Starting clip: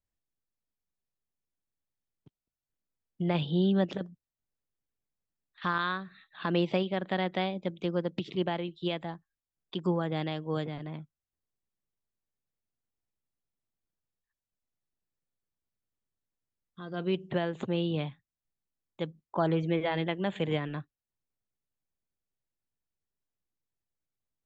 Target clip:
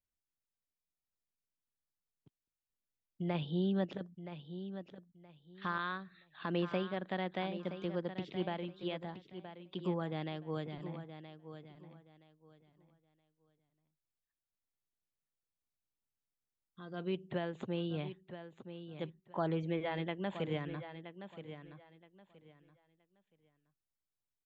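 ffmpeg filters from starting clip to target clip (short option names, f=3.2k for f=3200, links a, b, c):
-filter_complex "[0:a]acrossover=split=3900[a][b];[b]acompressor=threshold=-53dB:ratio=4:attack=1:release=60[c];[a][c]amix=inputs=2:normalize=0,aecho=1:1:972|1944|2916:0.282|0.0648|0.0149,volume=-7dB"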